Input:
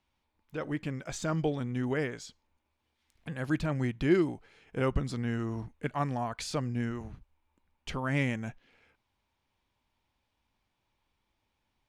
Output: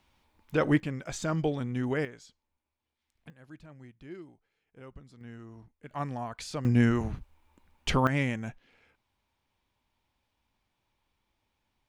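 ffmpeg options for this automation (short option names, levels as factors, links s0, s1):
-af "asetnsamples=n=441:p=0,asendcmd='0.8 volume volume 1dB;2.05 volume volume -8dB;3.3 volume volume -19.5dB;5.21 volume volume -13.5dB;5.91 volume volume -3dB;6.65 volume volume 10dB;8.07 volume volume 0.5dB',volume=3.16"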